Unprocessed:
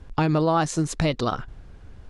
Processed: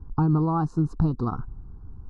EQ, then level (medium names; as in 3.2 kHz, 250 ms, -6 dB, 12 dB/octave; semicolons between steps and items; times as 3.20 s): Butterworth band-stop 2.1 kHz, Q 0.67; distance through air 390 m; static phaser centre 1.4 kHz, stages 4; +3.5 dB